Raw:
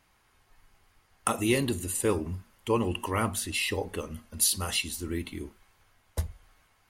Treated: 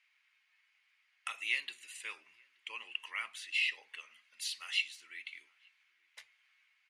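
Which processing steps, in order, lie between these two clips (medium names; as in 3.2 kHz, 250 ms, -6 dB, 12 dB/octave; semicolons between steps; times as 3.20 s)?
ladder band-pass 2.6 kHz, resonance 55%; echo from a far wall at 150 m, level -27 dB; trim +5.5 dB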